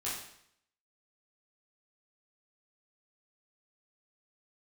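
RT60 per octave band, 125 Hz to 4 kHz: 0.70, 0.70, 0.70, 0.70, 0.70, 0.65 seconds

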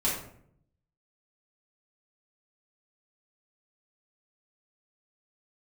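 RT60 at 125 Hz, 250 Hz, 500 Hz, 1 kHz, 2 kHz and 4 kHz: 1.0, 0.90, 0.70, 0.55, 0.50, 0.40 seconds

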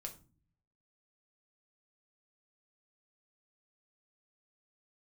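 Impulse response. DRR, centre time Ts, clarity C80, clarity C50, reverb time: 2.5 dB, 11 ms, 18.5 dB, 13.0 dB, 0.35 s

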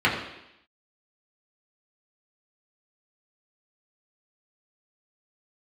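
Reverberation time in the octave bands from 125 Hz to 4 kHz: 0.70, 0.85, 0.80, 0.85, 0.90, 0.95 seconds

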